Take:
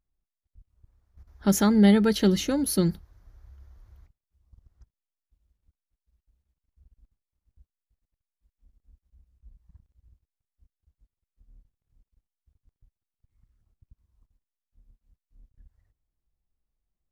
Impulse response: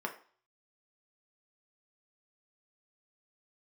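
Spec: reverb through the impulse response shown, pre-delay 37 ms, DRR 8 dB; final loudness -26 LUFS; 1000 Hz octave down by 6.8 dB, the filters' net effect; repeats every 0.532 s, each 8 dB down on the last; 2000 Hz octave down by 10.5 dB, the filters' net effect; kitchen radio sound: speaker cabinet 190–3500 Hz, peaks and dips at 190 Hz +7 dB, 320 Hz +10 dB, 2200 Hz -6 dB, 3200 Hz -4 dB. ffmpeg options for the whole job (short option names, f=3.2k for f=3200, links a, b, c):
-filter_complex "[0:a]equalizer=f=1k:t=o:g=-7,equalizer=f=2k:t=o:g=-8.5,aecho=1:1:532|1064|1596|2128|2660:0.398|0.159|0.0637|0.0255|0.0102,asplit=2[a][b];[1:a]atrim=start_sample=2205,adelay=37[c];[b][c]afir=irnorm=-1:irlink=0,volume=-12dB[d];[a][d]amix=inputs=2:normalize=0,highpass=190,equalizer=f=190:t=q:w=4:g=7,equalizer=f=320:t=q:w=4:g=10,equalizer=f=2.2k:t=q:w=4:g=-6,equalizer=f=3.2k:t=q:w=4:g=-4,lowpass=f=3.5k:w=0.5412,lowpass=f=3.5k:w=1.3066,volume=-7.5dB"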